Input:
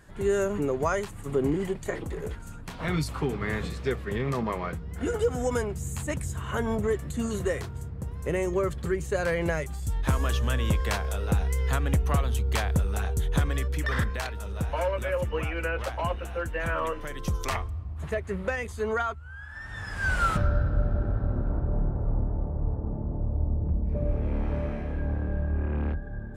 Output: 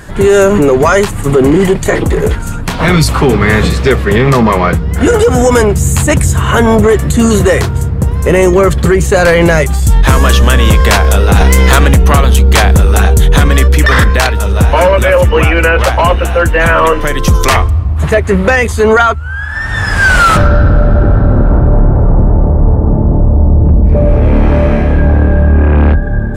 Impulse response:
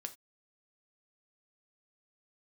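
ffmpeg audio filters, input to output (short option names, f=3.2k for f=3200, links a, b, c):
-filter_complex "[0:a]asplit=3[a][b][c];[a]afade=t=out:st=11.35:d=0.02[d];[b]acontrast=87,afade=t=in:st=11.35:d=0.02,afade=t=out:st=11.86:d=0.02[e];[c]afade=t=in:st=11.86:d=0.02[f];[d][e][f]amix=inputs=3:normalize=0,apsyclip=25.5dB,volume=-2dB"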